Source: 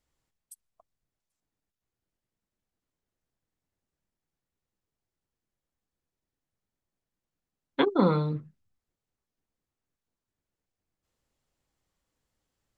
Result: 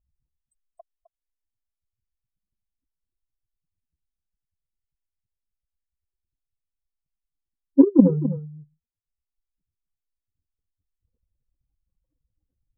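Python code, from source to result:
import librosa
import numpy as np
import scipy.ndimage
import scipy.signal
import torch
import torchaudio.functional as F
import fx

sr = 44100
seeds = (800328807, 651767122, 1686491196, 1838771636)

y = fx.spec_expand(x, sr, power=3.5)
y = scipy.signal.sosfilt(scipy.signal.butter(2, 1100.0, 'lowpass', fs=sr, output='sos'), y)
y = fx.transient(y, sr, attack_db=11, sustain_db=-6)
y = y + 10.0 ** (-13.0 / 20.0) * np.pad(y, (int(259 * sr / 1000.0), 0))[:len(y)]
y = y * librosa.db_to_amplitude(4.0)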